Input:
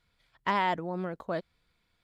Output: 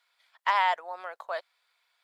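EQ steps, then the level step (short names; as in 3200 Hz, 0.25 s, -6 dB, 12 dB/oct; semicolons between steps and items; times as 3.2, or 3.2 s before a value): inverse Chebyshev high-pass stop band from 260 Hz, stop band 50 dB; +4.0 dB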